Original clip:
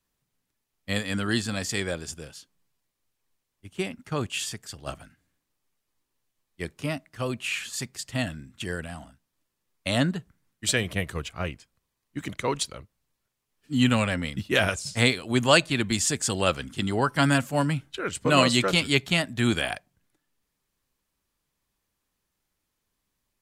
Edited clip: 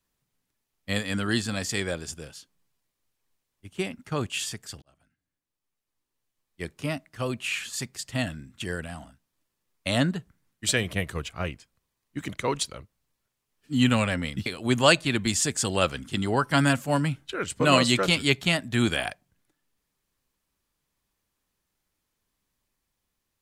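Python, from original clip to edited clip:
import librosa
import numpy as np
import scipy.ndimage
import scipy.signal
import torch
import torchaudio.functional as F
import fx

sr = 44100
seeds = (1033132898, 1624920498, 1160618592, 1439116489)

y = fx.edit(x, sr, fx.fade_in_span(start_s=4.82, length_s=2.1),
    fx.cut(start_s=14.46, length_s=0.65), tone=tone)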